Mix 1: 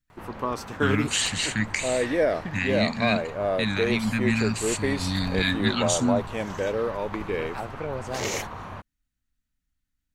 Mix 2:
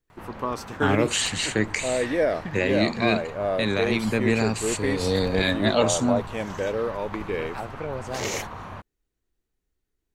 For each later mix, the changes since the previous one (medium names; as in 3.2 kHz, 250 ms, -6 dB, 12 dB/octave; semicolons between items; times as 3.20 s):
first voice: remove brick-wall FIR band-stop 300–1200 Hz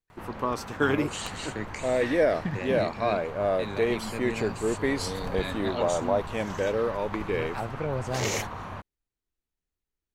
first voice -12.0 dB; second voice: remove high-pass 220 Hz 6 dB/octave